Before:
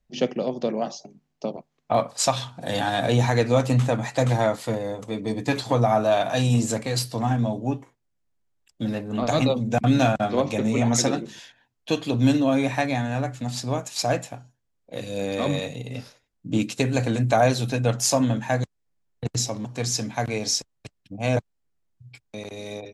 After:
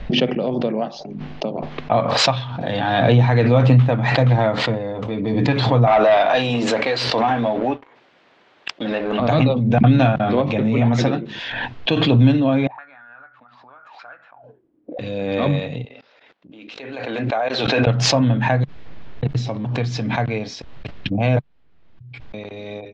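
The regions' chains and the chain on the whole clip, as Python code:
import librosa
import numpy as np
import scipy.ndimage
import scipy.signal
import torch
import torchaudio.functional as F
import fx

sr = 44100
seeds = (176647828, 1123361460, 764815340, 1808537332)

y = fx.chain(x, sr, fx.highpass(hz=430.0, slope=12),
    fx.leveller(passes=2), at=(5.87, 9.2))
y = fx.chain(y, sr, fx.peak_eq(hz=93.0, db=-4.0, octaves=0.39),
    fx.auto_wah(base_hz=280.0, top_hz=1400.0, q=13.0, full_db=-24.5, direction='up'), at=(12.67, 14.99))
y = fx.chain(y, sr, fx.bandpass_edges(low_hz=450.0, high_hz=6700.0),
    fx.level_steps(step_db=23), at=(15.85, 17.87))
y = fx.dynamic_eq(y, sr, hz=140.0, q=2.1, threshold_db=-38.0, ratio=4.0, max_db=6)
y = scipy.signal.sosfilt(scipy.signal.butter(4, 3600.0, 'lowpass', fs=sr, output='sos'), y)
y = fx.pre_swell(y, sr, db_per_s=29.0)
y = F.gain(torch.from_numpy(y), 2.5).numpy()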